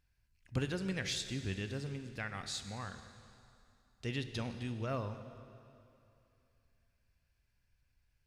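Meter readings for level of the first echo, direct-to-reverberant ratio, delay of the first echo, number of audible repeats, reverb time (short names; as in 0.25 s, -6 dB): none, 9.0 dB, none, none, 2.7 s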